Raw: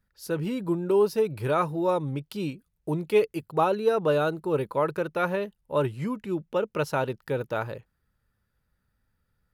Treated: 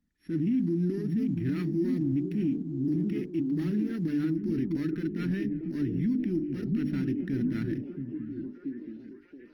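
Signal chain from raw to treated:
samples sorted by size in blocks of 8 samples
leveller curve on the samples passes 1
downward compressor 20 to 1, threshold −22 dBFS, peak gain reduction 8.5 dB
parametric band 70 Hz +3 dB 2.7 octaves
mains-hum notches 50/100/150/200/250/300/350/400 Hz
echo through a band-pass that steps 677 ms, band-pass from 180 Hz, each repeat 0.7 octaves, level −4.5 dB
transient designer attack −8 dB, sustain +1 dB
drawn EQ curve 120 Hz 0 dB, 300 Hz +15 dB, 540 Hz −29 dB, 1,100 Hz −24 dB, 1,800 Hz +3 dB, 7,400 Hz −26 dB, 12,000 Hz −20 dB
brickwall limiter −18 dBFS, peak gain reduction 8 dB
level −3 dB
Opus 24 kbit/s 48,000 Hz

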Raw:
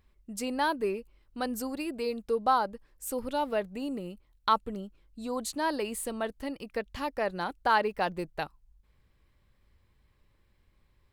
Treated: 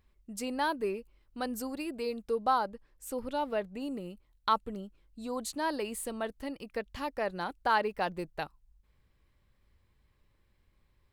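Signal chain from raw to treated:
0:02.69–0:03.81: high-shelf EQ 6,900 Hz −6 dB
level −2.5 dB

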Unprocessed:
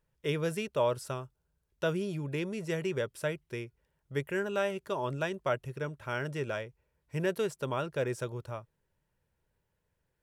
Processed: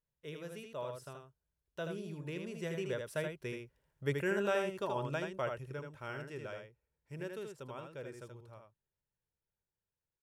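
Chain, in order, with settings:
source passing by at 0:04.10, 9 m/s, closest 8 metres
single-tap delay 79 ms −5 dB
level −1.5 dB

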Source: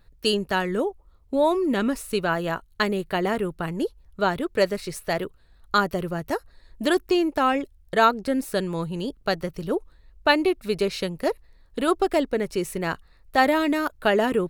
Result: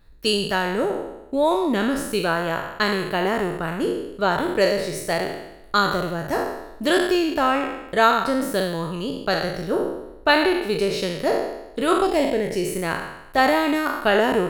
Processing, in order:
peak hold with a decay on every bin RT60 0.91 s
0:12.06–0:12.67: parametric band 1,300 Hz −9.5 dB 0.69 octaves

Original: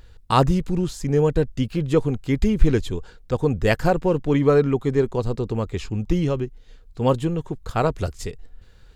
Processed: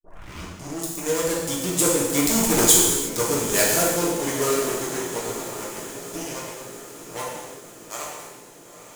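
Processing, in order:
turntable start at the beginning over 0.96 s
source passing by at 0:02.60, 22 m/s, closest 6.6 metres
mains-hum notches 50/100/150 Hz
leveller curve on the samples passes 5
high shelf with overshoot 5,300 Hz +7.5 dB, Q 1.5
in parallel at −0.5 dB: downward compressor, threshold −18 dBFS, peak gain reduction 11 dB
on the sum: RIAA equalisation recording
on a send: feedback delay with all-pass diffusion 921 ms, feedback 60%, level −12.5 dB
on the sum: reverb whose tail is shaped and stops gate 390 ms falling, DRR −5 dB
level −13.5 dB

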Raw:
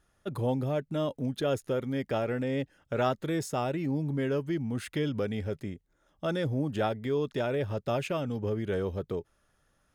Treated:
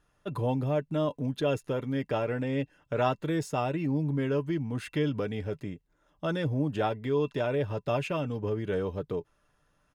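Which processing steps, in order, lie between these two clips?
high-shelf EQ 7,100 Hz −7 dB
comb filter 6.7 ms, depth 31%
hollow resonant body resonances 1,000/2,700 Hz, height 11 dB, ringing for 80 ms

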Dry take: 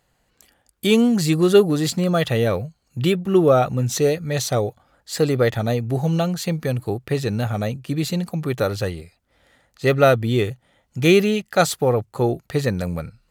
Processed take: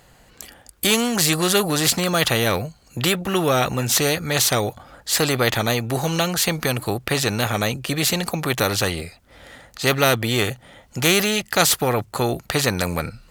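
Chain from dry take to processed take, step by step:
every bin compressed towards the loudest bin 2 to 1

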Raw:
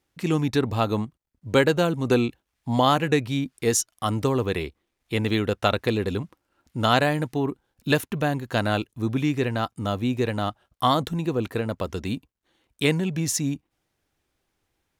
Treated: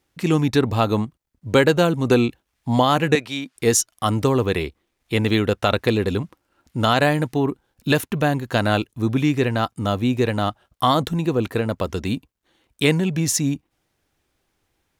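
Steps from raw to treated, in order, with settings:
0:03.15–0:03.56: meter weighting curve A
boost into a limiter +8.5 dB
level −4 dB

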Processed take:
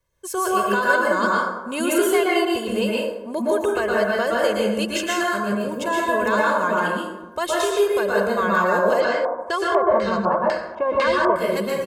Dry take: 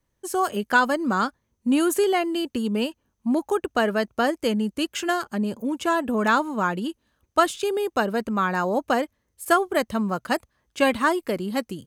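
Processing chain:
low-shelf EQ 410 Hz −4 dB
comb filter 1.9 ms, depth 72%
brickwall limiter −15.5 dBFS, peak gain reduction 10.5 dB
dense smooth reverb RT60 1.1 s, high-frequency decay 0.45×, pre-delay 105 ms, DRR −4.5 dB
0:09.00–0:11.36: auto-filter low-pass square 2 Hz 950–4,800 Hz

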